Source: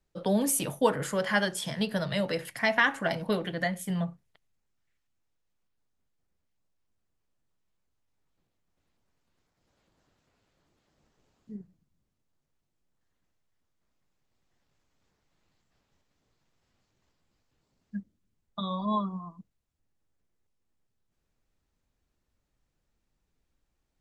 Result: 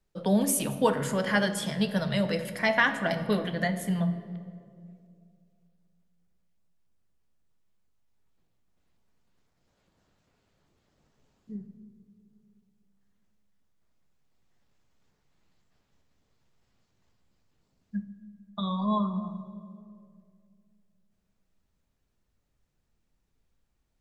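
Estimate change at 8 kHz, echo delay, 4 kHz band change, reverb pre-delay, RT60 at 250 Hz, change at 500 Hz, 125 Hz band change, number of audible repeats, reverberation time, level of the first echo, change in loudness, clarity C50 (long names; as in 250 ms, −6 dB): 0.0 dB, no echo audible, +0.5 dB, 4 ms, 2.8 s, +1.0 dB, +4.0 dB, no echo audible, 2.4 s, no echo audible, +1.0 dB, 11.0 dB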